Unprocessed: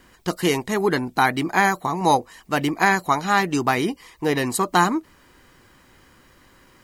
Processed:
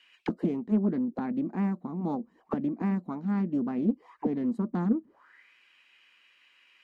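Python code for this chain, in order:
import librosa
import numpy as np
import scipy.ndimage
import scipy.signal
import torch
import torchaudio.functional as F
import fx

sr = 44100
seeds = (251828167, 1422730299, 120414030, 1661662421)

y = fx.peak_eq(x, sr, hz=120.0, db=-8.5, octaves=0.44)
y = fx.auto_wah(y, sr, base_hz=220.0, top_hz=2900.0, q=7.1, full_db=-21.5, direction='down')
y = fx.doppler_dist(y, sr, depth_ms=0.32)
y = y * librosa.db_to_amplitude(7.0)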